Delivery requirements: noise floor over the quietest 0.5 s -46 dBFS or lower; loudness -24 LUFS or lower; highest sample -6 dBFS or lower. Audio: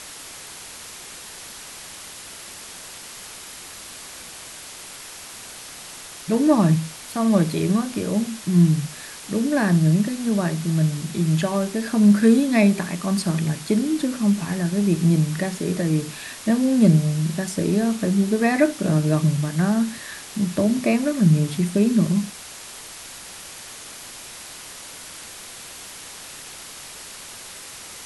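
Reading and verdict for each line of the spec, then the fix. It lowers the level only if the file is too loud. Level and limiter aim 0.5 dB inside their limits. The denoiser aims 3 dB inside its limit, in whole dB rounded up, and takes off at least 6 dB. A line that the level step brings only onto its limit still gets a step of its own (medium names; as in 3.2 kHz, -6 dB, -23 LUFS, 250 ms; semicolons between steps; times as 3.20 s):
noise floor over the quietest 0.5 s -39 dBFS: fail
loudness -20.5 LUFS: fail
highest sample -5.0 dBFS: fail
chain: noise reduction 6 dB, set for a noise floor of -39 dBFS; trim -4 dB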